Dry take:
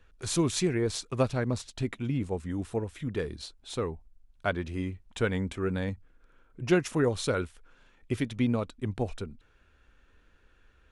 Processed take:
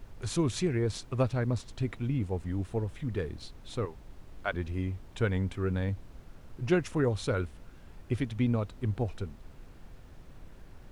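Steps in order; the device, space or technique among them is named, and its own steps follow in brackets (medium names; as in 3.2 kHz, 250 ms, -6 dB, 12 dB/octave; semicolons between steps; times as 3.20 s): 3.85–4.54 s: frequency weighting A; car interior (peaking EQ 100 Hz +7 dB 0.72 oct; treble shelf 4.8 kHz -6.5 dB; brown noise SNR 14 dB); trim -2.5 dB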